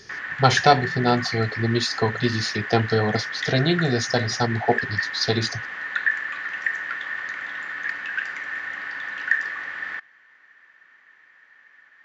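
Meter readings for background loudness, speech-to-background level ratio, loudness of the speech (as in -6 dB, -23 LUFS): -28.0 LUFS, 5.5 dB, -22.5 LUFS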